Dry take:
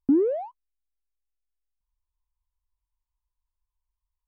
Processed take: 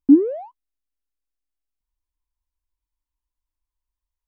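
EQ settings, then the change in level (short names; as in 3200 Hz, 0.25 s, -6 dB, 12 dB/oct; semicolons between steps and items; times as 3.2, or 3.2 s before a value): bell 290 Hz +12.5 dB 0.37 oct; -1.5 dB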